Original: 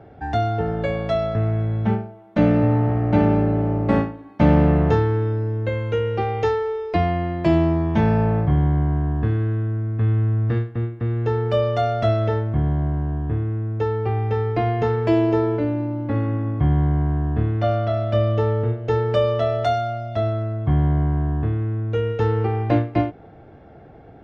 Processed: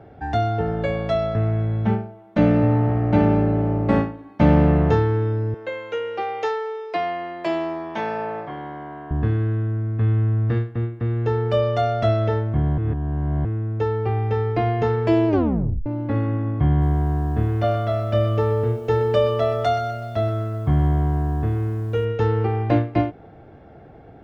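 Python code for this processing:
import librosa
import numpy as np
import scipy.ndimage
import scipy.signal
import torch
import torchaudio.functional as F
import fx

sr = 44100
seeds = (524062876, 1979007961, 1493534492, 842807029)

y = fx.highpass(x, sr, hz=510.0, slope=12, at=(5.54, 9.11))
y = fx.echo_crushed(y, sr, ms=125, feedback_pct=55, bits=8, wet_db=-12, at=(16.69, 22.05))
y = fx.edit(y, sr, fx.reverse_span(start_s=12.78, length_s=0.67),
    fx.tape_stop(start_s=15.28, length_s=0.58), tone=tone)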